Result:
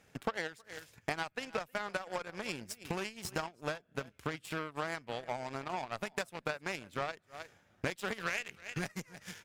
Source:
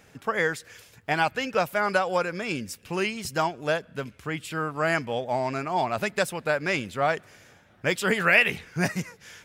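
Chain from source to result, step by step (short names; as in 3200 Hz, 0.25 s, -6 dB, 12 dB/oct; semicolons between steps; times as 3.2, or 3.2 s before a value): echo 0.313 s -18 dB; compressor 8:1, threshold -39 dBFS, peak gain reduction 24 dB; added harmonics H 3 -26 dB, 5 -22 dB, 7 -16 dB, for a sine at -25 dBFS; gain +6.5 dB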